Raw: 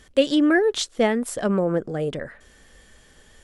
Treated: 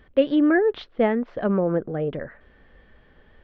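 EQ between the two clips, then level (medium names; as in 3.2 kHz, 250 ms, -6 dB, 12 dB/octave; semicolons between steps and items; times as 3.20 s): Gaussian low-pass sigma 3.3 samples; 0.0 dB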